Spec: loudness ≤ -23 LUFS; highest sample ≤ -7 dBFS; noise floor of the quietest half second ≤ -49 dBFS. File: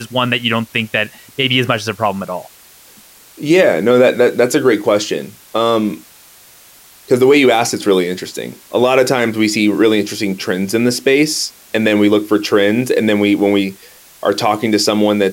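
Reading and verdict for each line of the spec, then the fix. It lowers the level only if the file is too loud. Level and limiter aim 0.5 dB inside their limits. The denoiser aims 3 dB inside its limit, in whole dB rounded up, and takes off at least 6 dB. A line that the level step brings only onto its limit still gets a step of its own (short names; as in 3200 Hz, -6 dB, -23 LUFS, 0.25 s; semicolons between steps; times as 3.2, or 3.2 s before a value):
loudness -14.5 LUFS: fail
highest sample -2.0 dBFS: fail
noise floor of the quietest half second -43 dBFS: fail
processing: gain -9 dB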